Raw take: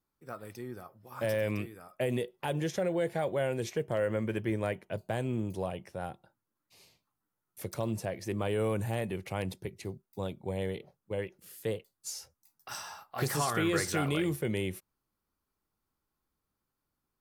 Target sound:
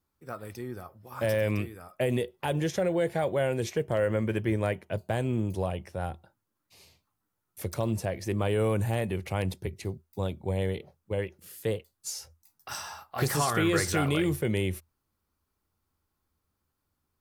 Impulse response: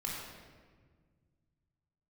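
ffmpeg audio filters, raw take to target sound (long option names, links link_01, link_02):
-af "equalizer=frequency=81:width=4:gain=12.5,volume=3.5dB"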